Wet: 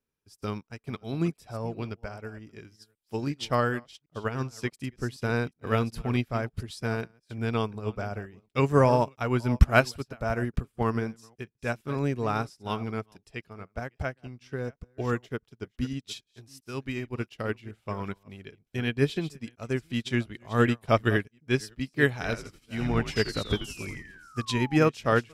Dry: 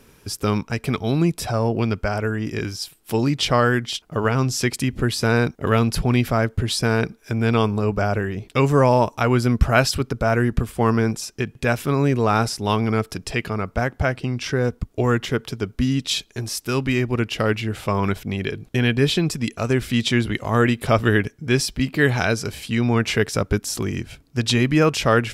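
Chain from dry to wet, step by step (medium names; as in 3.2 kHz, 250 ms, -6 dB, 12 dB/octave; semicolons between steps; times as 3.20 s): chunks repeated in reverse 369 ms, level -13 dB; 23.11–24.77 s: painted sound fall 760–5400 Hz -29 dBFS; 22.15–24.45 s: frequency-shifting echo 84 ms, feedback 38%, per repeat -77 Hz, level -5.5 dB; upward expansion 2.5:1, over -35 dBFS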